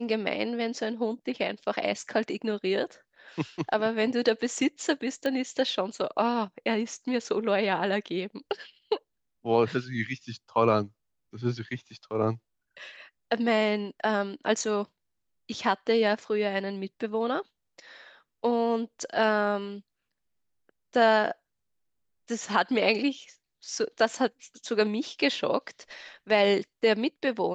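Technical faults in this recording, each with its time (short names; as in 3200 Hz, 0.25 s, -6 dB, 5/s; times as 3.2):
5.26 pop -17 dBFS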